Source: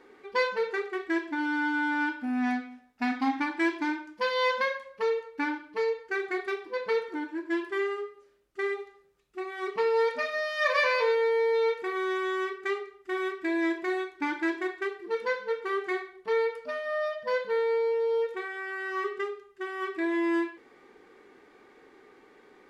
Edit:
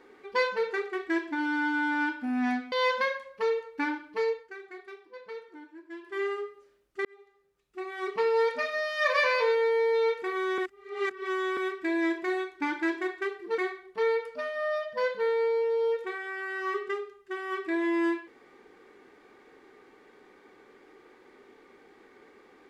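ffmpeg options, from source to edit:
ffmpeg -i in.wav -filter_complex "[0:a]asplit=8[link_01][link_02][link_03][link_04][link_05][link_06][link_07][link_08];[link_01]atrim=end=2.722[link_09];[link_02]atrim=start=4.318:end=6.14,asetpts=PTS-STARTPTS,afade=type=out:start_time=1.582:duration=0.24:silence=0.211349[link_10];[link_03]atrim=start=6.14:end=7.63,asetpts=PTS-STARTPTS,volume=-13.5dB[link_11];[link_04]atrim=start=7.63:end=8.65,asetpts=PTS-STARTPTS,afade=type=in:duration=0.24:silence=0.211349,afade=type=out:start_time=1.016:duration=0.004:curve=hsin[link_12];[link_05]atrim=start=8.65:end=12.182,asetpts=PTS-STARTPTS,afade=type=in:duration=0.91[link_13];[link_06]atrim=start=12.178:end=13.172,asetpts=PTS-STARTPTS,areverse[link_14];[link_07]atrim=start=13.168:end=15.182[link_15];[link_08]atrim=start=15.878[link_16];[link_10][link_11][link_12][link_13]concat=n=4:v=0:a=1[link_17];[link_09][link_17]acrossfade=duration=0.004:curve1=hsin:curve2=hsin[link_18];[link_18][link_14]acrossfade=duration=0.004:curve1=hsin:curve2=hsin[link_19];[link_19][link_15]acrossfade=duration=0.004:curve1=hsin:curve2=hsin[link_20];[link_20][link_16]acrossfade=duration=0.004:curve1=hsin:curve2=hsin" out.wav

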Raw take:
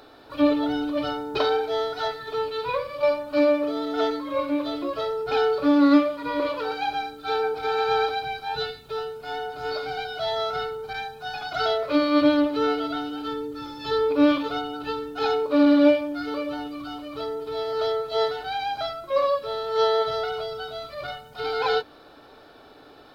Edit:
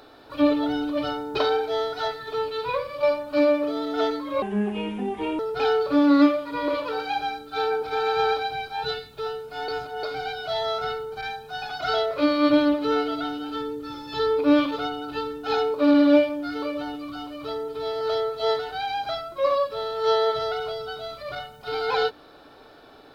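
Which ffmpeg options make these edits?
ffmpeg -i in.wav -filter_complex "[0:a]asplit=5[link_01][link_02][link_03][link_04][link_05];[link_01]atrim=end=4.424[link_06];[link_02]atrim=start=4.42:end=5.11,asetpts=PTS-STARTPTS,asetrate=31311,aresample=44100[link_07];[link_03]atrim=start=5.106:end=9.402[link_08];[link_04]atrim=start=9.398:end=9.752,asetpts=PTS-STARTPTS,areverse[link_09];[link_05]atrim=start=9.748[link_10];[link_06][link_07]acrossfade=duration=0.004:curve1=hsin:curve2=hsin[link_11];[link_11][link_08]acrossfade=duration=0.004:curve1=hsin:curve2=hsin[link_12];[link_12][link_09]acrossfade=duration=0.004:curve1=hsin:curve2=hsin[link_13];[link_13][link_10]acrossfade=duration=0.004:curve1=hsin:curve2=hsin" out.wav

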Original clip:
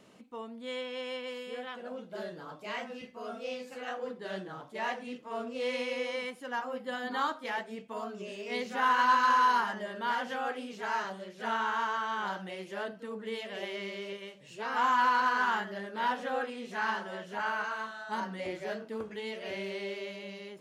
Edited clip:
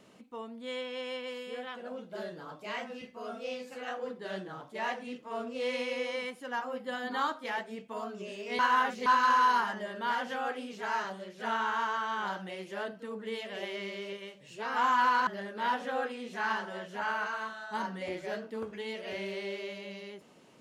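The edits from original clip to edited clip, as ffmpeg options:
ffmpeg -i in.wav -filter_complex "[0:a]asplit=4[link_01][link_02][link_03][link_04];[link_01]atrim=end=8.592[link_05];[link_02]atrim=start=8.588:end=9.062,asetpts=PTS-STARTPTS,areverse[link_06];[link_03]atrim=start=9.058:end=15.272[link_07];[link_04]atrim=start=15.648[link_08];[link_05][link_06]acrossfade=duration=0.004:curve1=hsin:curve2=hsin[link_09];[link_09][link_07]acrossfade=duration=0.004:curve1=hsin:curve2=hsin[link_10];[link_10][link_08]acrossfade=duration=0.004:curve1=hsin:curve2=hsin" out.wav

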